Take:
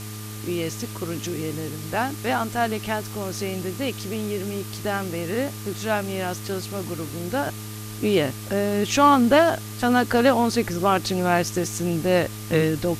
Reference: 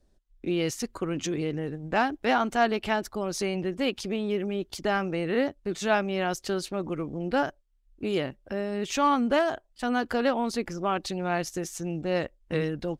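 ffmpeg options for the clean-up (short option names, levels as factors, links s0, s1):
-af "bandreject=f=106.3:t=h:w=4,bandreject=f=212.6:t=h:w=4,bandreject=f=318.9:t=h:w=4,bandreject=f=425.2:t=h:w=4,bandreject=f=1200:w=30,afwtdn=0.011,asetnsamples=n=441:p=0,asendcmd='7.46 volume volume -7.5dB',volume=1"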